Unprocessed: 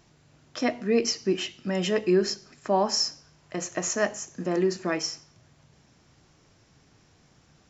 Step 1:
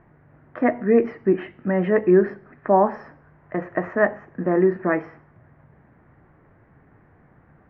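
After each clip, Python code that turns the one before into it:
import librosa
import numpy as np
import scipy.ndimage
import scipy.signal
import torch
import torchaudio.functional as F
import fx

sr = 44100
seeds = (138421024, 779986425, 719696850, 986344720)

y = scipy.signal.sosfilt(scipy.signal.cheby1(4, 1.0, 1900.0, 'lowpass', fs=sr, output='sos'), x)
y = y * librosa.db_to_amplitude(7.0)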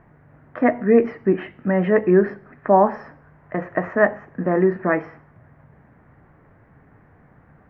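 y = fx.peak_eq(x, sr, hz=350.0, db=-4.5, octaves=0.22)
y = y * librosa.db_to_amplitude(2.5)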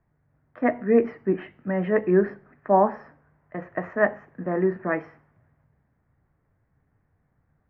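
y = fx.band_widen(x, sr, depth_pct=40)
y = y * librosa.db_to_amplitude(-6.0)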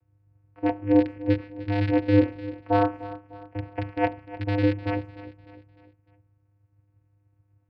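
y = fx.rattle_buzz(x, sr, strikes_db=-31.0, level_db=-13.0)
y = fx.echo_feedback(y, sr, ms=301, feedback_pct=45, wet_db=-16.0)
y = fx.vocoder(y, sr, bands=8, carrier='square', carrier_hz=101.0)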